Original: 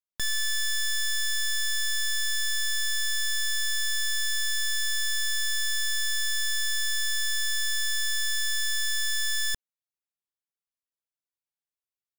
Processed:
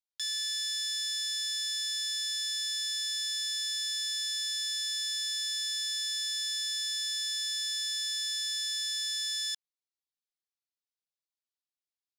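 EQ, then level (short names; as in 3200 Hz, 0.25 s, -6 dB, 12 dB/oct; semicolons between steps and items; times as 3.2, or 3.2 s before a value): band-pass 4100 Hz, Q 1.6; high shelf 4300 Hz +6.5 dB; -2.5 dB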